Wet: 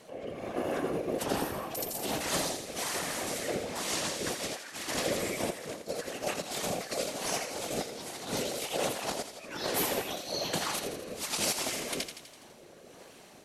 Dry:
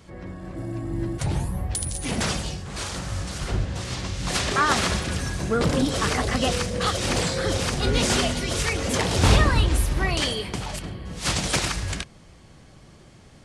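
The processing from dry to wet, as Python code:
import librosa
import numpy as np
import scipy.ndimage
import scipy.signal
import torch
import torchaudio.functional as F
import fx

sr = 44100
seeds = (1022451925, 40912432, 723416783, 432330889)

p1 = scipy.signal.sosfilt(scipy.signal.butter(6, 210.0, 'highpass', fs=sr, output='sos'), x)
p2 = fx.peak_eq(p1, sr, hz=290.0, db=3.5, octaves=1.1)
p3 = fx.hum_notches(p2, sr, base_hz=60, count=6)
p4 = fx.over_compress(p3, sr, threshold_db=-29.0, ratio=-0.5)
p5 = fx.rotary(p4, sr, hz=1.2)
p6 = fx.formant_shift(p5, sr, semitones=5)
p7 = fx.whisperise(p6, sr, seeds[0])
p8 = p7 + fx.echo_thinned(p7, sr, ms=83, feedback_pct=60, hz=1000.0, wet_db=-8, dry=0)
y = F.gain(torch.from_numpy(p8), -2.0).numpy()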